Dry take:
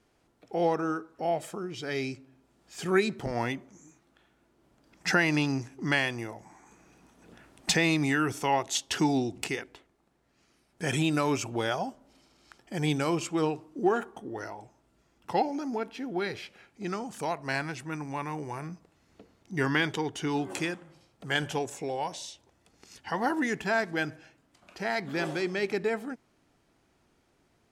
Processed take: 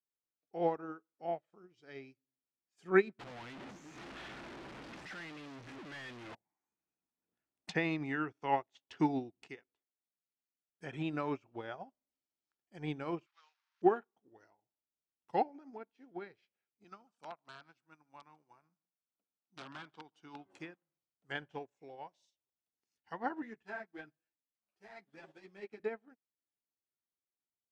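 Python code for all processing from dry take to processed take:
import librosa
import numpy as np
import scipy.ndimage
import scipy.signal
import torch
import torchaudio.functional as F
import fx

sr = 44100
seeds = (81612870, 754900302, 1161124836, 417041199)

y = fx.chain(x, sr, fx.clip_1bit(),
    fx.high_shelf(hz=2500.0, db=10.5), at=(3.19, 6.35))
y = fx.chain(y, sr, fx.delta_mod(bps=32000, step_db=-34.5),
    fx.highpass(hz=1100.0, slope=24), at=(13.26, 13.82))
y = fx.chain(y, sr, fx.overflow_wrap(gain_db=20.5),
    fx.cabinet(low_hz=190.0, low_slope=12, high_hz=9000.0, hz=(300.0, 430.0, 1300.0, 1900.0, 6800.0), db=(-3, -9, 4, -8, -6)),
    fx.echo_single(ms=145, db=-19.5), at=(16.84, 20.46))
y = fx.chain(y, sr, fx.cvsd(bps=64000),
    fx.ensemble(), at=(23.42, 25.8))
y = fx.env_lowpass_down(y, sr, base_hz=2400.0, full_db=-27.0)
y = fx.low_shelf(y, sr, hz=86.0, db=-8.5)
y = fx.upward_expand(y, sr, threshold_db=-46.0, expansion=2.5)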